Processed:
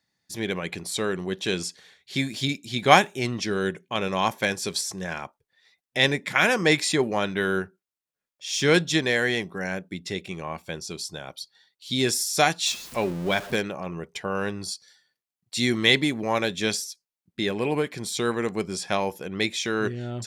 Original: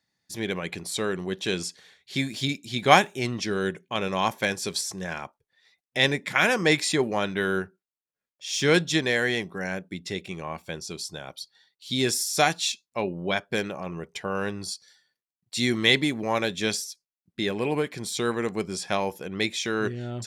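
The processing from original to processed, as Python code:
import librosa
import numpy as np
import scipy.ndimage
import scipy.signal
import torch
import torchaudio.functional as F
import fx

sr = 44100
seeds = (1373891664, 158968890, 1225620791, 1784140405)

y = fx.zero_step(x, sr, step_db=-34.5, at=(12.66, 13.56))
y = y * librosa.db_to_amplitude(1.0)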